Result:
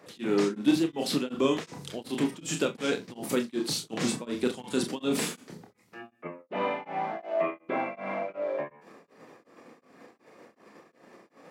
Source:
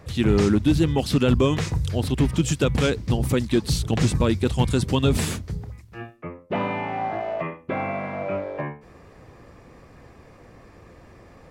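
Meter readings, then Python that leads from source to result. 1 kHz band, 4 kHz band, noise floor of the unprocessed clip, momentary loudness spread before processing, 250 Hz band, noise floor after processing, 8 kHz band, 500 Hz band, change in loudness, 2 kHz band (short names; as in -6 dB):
-5.0 dB, -4.5 dB, -49 dBFS, 14 LU, -6.5 dB, -66 dBFS, -3.0 dB, -5.0 dB, -7.0 dB, -5.0 dB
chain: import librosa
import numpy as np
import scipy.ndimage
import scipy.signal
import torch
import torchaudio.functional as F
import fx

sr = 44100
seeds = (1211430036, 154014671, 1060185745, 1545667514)

p1 = scipy.signal.sosfilt(scipy.signal.butter(4, 210.0, 'highpass', fs=sr, output='sos'), x)
p2 = fx.level_steps(p1, sr, step_db=17)
p3 = p1 + (p2 * 10.0 ** (-1.5 / 20.0))
p4 = fx.chorus_voices(p3, sr, voices=2, hz=0.33, base_ms=29, depth_ms=4.6, mix_pct=35)
p5 = fx.room_flutter(p4, sr, wall_m=7.3, rt60_s=0.24)
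p6 = p5 * np.abs(np.cos(np.pi * 2.7 * np.arange(len(p5)) / sr))
y = p6 * 10.0 ** (-2.0 / 20.0)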